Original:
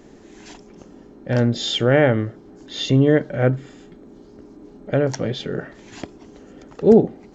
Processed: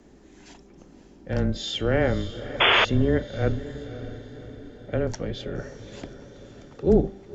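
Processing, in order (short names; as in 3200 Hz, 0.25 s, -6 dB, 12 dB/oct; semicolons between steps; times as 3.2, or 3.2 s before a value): octaver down 2 oct, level -4 dB; diffused feedback echo 0.567 s, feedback 50%, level -12 dB; frequency shift -15 Hz; de-hum 195.6 Hz, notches 20; painted sound noise, 2.6–2.85, 340–3500 Hz -11 dBFS; gain -7 dB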